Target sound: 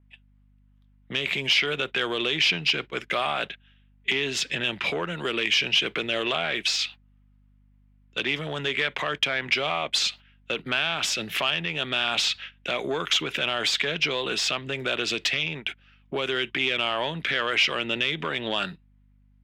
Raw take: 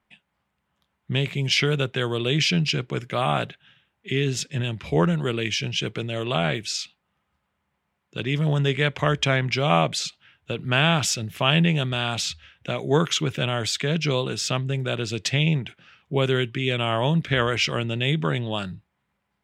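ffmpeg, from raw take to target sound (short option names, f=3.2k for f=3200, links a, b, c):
-filter_complex "[0:a]acompressor=threshold=-26dB:ratio=12,asoftclip=type=tanh:threshold=-21dB,alimiter=level_in=3.5dB:limit=-24dB:level=0:latency=1:release=198,volume=-3.5dB,crystalizer=i=9:c=0,agate=range=-23dB:threshold=-35dB:ratio=16:detection=peak,acontrast=78,acrossover=split=210 3400:gain=0.0708 1 0.0891[a][b][c];[a][b][c]amix=inputs=3:normalize=0,aeval=exprs='val(0)+0.00112*(sin(2*PI*50*n/s)+sin(2*PI*2*50*n/s)/2+sin(2*PI*3*50*n/s)/3+sin(2*PI*4*50*n/s)/4+sin(2*PI*5*50*n/s)/5)':c=same,adynamicequalizer=threshold=0.0126:dfrequency=5400:dqfactor=0.7:tfrequency=5400:tqfactor=0.7:attack=5:release=100:ratio=0.375:range=2:mode=cutabove:tftype=highshelf,volume=1dB"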